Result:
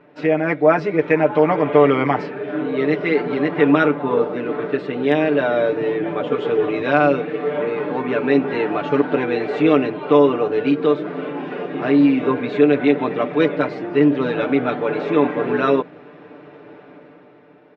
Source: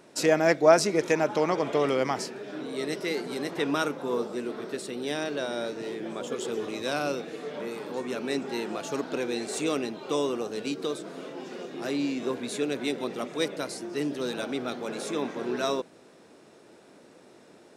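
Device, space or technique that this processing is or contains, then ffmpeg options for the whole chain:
action camera in a waterproof case: -af "lowpass=f=2600:w=0.5412,lowpass=f=2600:w=1.3066,aecho=1:1:6.8:0.85,dynaudnorm=f=100:g=17:m=2.82,volume=1.26" -ar 44100 -c:a aac -b:a 128k

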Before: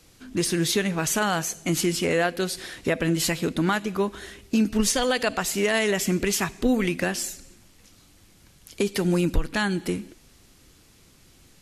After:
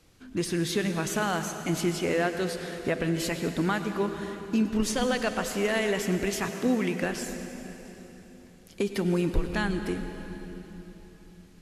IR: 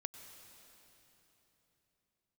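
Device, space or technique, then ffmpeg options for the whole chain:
swimming-pool hall: -filter_complex "[1:a]atrim=start_sample=2205[s0];[0:a][s0]afir=irnorm=-1:irlink=0,highshelf=f=3600:g=-7,asettb=1/sr,asplit=3[s1][s2][s3];[s1]atrim=end=6.474[s4];[s2]atrim=start=6.47:end=7.03,asetpts=PTS-STARTPTS,afade=t=in:d=0.004:c=qsin,afade=t=out:st=0.556:d=0.004:c=qsin,highpass=f=88:w=0.5412,highpass=f=88:w=1.3066[s5];[s3]atrim=start=7.026[s6];[s4][s5]acrossfade=d=0.004:c1=hsin:c2=qsin[s7];[s7][s6]acrossfade=d=0.004:c1=qsin:c2=hsin"

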